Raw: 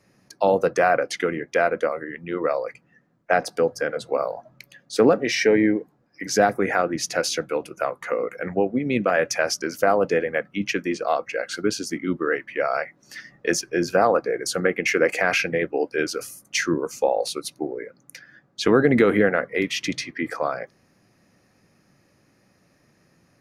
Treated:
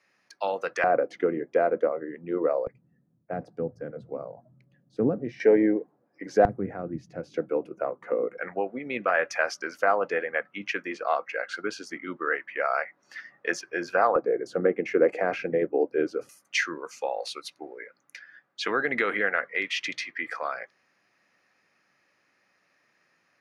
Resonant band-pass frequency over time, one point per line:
resonant band-pass, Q 0.87
2,200 Hz
from 0:00.84 400 Hz
from 0:02.67 120 Hz
from 0:05.40 540 Hz
from 0:06.45 110 Hz
from 0:07.34 340 Hz
from 0:08.38 1,300 Hz
from 0:14.16 410 Hz
from 0:16.29 2,000 Hz

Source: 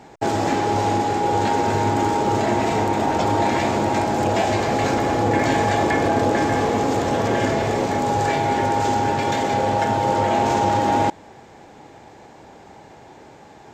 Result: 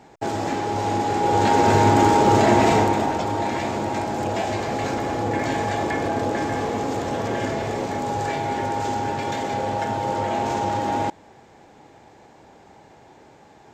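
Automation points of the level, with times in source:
0:00.74 −4.5 dB
0:01.71 +4 dB
0:02.72 +4 dB
0:03.24 −5 dB

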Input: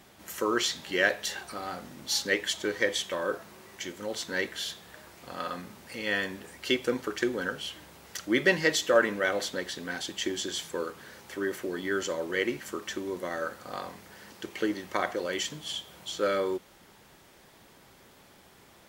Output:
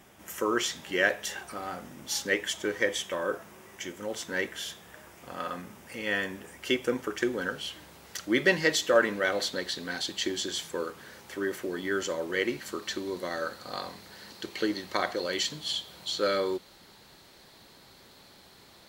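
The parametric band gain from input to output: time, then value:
parametric band 4,200 Hz 0.33 octaves
0:07.07 −9 dB
0:07.56 +1.5 dB
0:08.92 +1.5 dB
0:09.68 +9 dB
0:10.23 +9 dB
0:10.64 +1 dB
0:12.25 +1 dB
0:12.89 +12.5 dB

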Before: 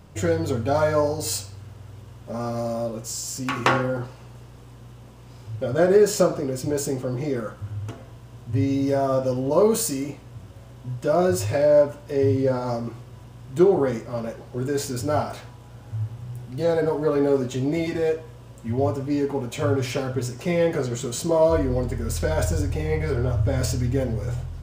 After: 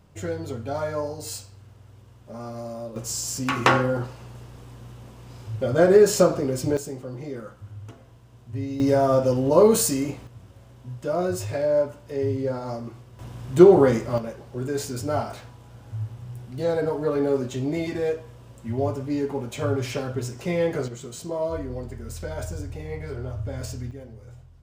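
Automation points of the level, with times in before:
−7.5 dB
from 0:02.96 +1.5 dB
from 0:06.77 −8 dB
from 0:08.80 +2.5 dB
from 0:10.27 −5 dB
from 0:13.19 +5 dB
from 0:14.18 −2.5 dB
from 0:20.88 −9 dB
from 0:23.91 −17 dB

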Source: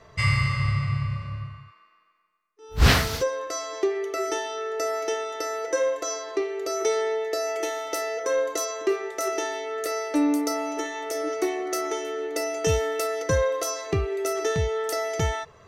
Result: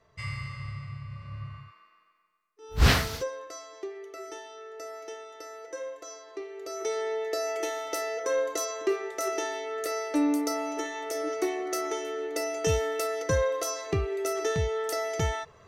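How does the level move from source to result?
0:01.04 −13.5 dB
0:01.56 −1 dB
0:02.71 −1 dB
0:03.74 −13.5 dB
0:06.26 −13.5 dB
0:07.28 −3 dB

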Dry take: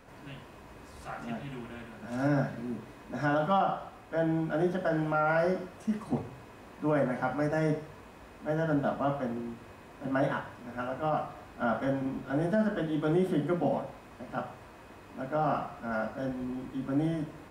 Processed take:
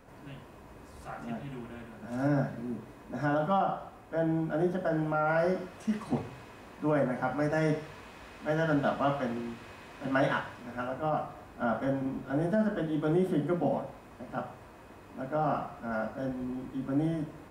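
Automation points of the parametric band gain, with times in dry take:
parametric band 3,300 Hz 2.7 octaves
0:05.16 −4.5 dB
0:05.89 +4.5 dB
0:06.40 +4.5 dB
0:07.16 −2.5 dB
0:07.87 +7 dB
0:10.38 +7 dB
0:11.02 −3 dB

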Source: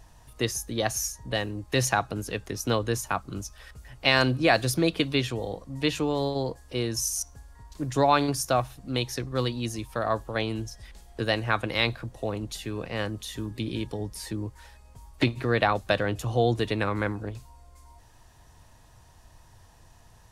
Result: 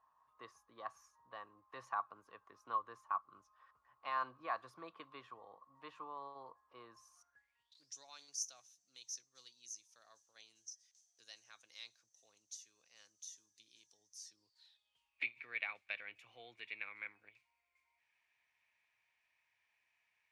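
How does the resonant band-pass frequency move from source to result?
resonant band-pass, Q 13
0:07.16 1,100 Hz
0:07.96 6,100 Hz
0:14.22 6,100 Hz
0:15.25 2,300 Hz

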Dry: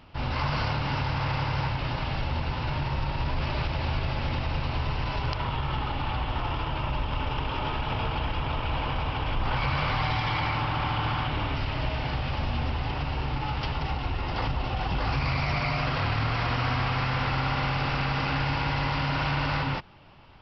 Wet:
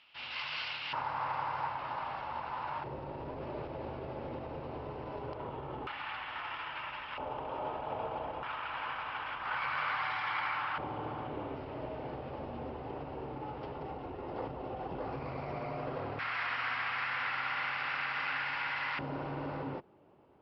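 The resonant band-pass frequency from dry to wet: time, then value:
resonant band-pass, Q 1.9
2,900 Hz
from 0:00.93 1,000 Hz
from 0:02.84 440 Hz
from 0:05.87 1,800 Hz
from 0:07.18 600 Hz
from 0:08.43 1,500 Hz
from 0:10.78 440 Hz
from 0:16.19 1,800 Hz
from 0:18.99 400 Hz

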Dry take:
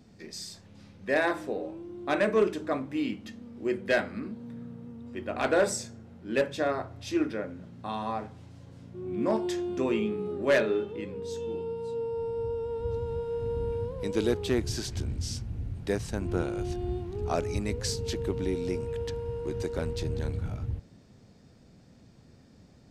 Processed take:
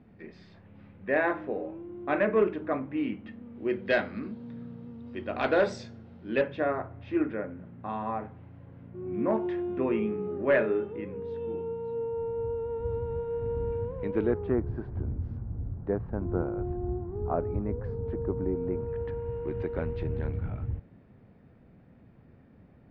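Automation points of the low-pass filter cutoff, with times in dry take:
low-pass filter 24 dB per octave
0:03.39 2,500 Hz
0:03.97 4,300 Hz
0:06.19 4,300 Hz
0:06.69 2,300 Hz
0:14.03 2,300 Hz
0:14.66 1,300 Hz
0:18.55 1,300 Hz
0:19.34 2,400 Hz

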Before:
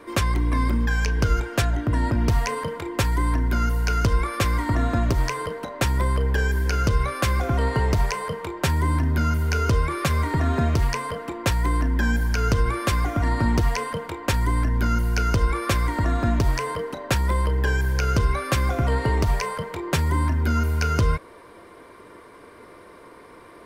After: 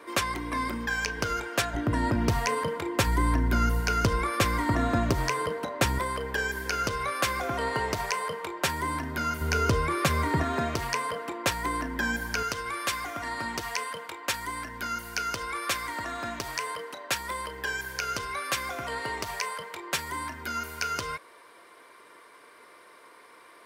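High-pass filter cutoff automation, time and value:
high-pass filter 6 dB per octave
560 Hz
from 0:01.74 160 Hz
from 0:03.07 68 Hz
from 0:03.80 150 Hz
from 0:05.99 610 Hz
from 0:09.41 160 Hz
from 0:10.43 490 Hz
from 0:12.43 1,500 Hz

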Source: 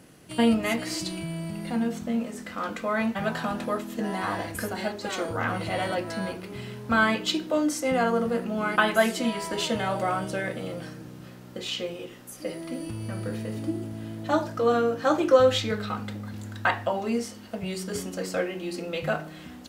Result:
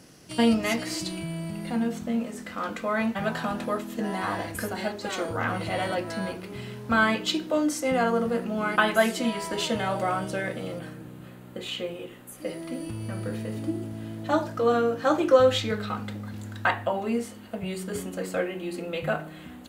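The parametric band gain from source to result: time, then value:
parametric band 5,400 Hz 0.53 octaves
+10 dB
from 0:00.83 −1 dB
from 0:10.79 −13 dB
from 0:12.44 −3 dB
from 0:16.73 −11.5 dB

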